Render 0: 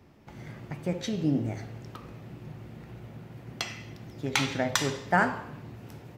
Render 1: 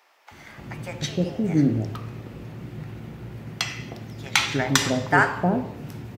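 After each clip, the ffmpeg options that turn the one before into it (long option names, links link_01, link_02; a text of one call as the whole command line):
ffmpeg -i in.wav -filter_complex "[0:a]acrossover=split=670[link_01][link_02];[link_01]adelay=310[link_03];[link_03][link_02]amix=inputs=2:normalize=0,volume=7dB" out.wav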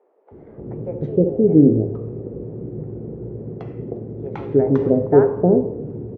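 ffmpeg -i in.wav -af "lowpass=frequency=440:width_type=q:width=4.9,volume=3.5dB" out.wav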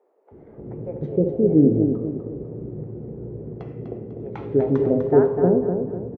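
ffmpeg -i in.wav -af "aecho=1:1:249|498|747|996:0.447|0.165|0.0612|0.0226,volume=-3.5dB" out.wav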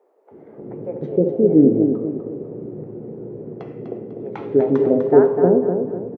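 ffmpeg -i in.wav -af "highpass=200,volume=4dB" out.wav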